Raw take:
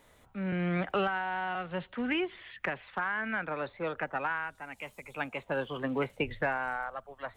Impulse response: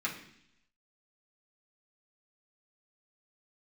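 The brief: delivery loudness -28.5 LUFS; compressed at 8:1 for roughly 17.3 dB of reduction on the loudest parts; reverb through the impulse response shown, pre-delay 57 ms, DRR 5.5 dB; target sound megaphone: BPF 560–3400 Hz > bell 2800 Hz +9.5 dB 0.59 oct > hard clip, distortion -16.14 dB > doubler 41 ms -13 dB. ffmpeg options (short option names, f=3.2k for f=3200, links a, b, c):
-filter_complex "[0:a]acompressor=threshold=-45dB:ratio=8,asplit=2[a][b];[1:a]atrim=start_sample=2205,adelay=57[c];[b][c]afir=irnorm=-1:irlink=0,volume=-11dB[d];[a][d]amix=inputs=2:normalize=0,highpass=560,lowpass=3.4k,equalizer=f=2.8k:t=o:w=0.59:g=9.5,asoftclip=type=hard:threshold=-39dB,asplit=2[e][f];[f]adelay=41,volume=-13dB[g];[e][g]amix=inputs=2:normalize=0,volume=19dB"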